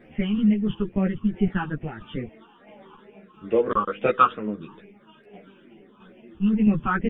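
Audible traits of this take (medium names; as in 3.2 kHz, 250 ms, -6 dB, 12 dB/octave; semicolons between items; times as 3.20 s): phasing stages 8, 2.3 Hz, lowest notch 590–1200 Hz; tremolo saw down 1.5 Hz, depth 50%; a shimmering, thickened sound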